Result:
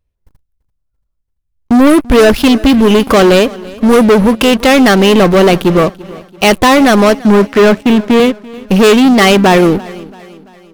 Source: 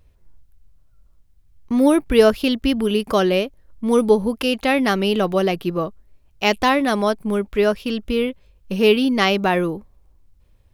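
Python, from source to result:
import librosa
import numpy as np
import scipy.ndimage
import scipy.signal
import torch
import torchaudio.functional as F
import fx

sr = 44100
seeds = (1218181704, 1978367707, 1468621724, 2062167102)

p1 = fx.cabinet(x, sr, low_hz=140.0, low_slope=24, high_hz=3000.0, hz=(220.0, 360.0, 800.0, 1800.0), db=(3, 5, -9, 8), at=(7.16, 8.2))
p2 = fx.leveller(p1, sr, passes=5)
p3 = fx.echo_feedback(p2, sr, ms=338, feedback_pct=51, wet_db=-18.5)
p4 = fx.backlash(p3, sr, play_db=-16.5)
p5 = p3 + F.gain(torch.from_numpy(p4), -4.0).numpy()
y = F.gain(torch.from_numpy(p5), -5.0).numpy()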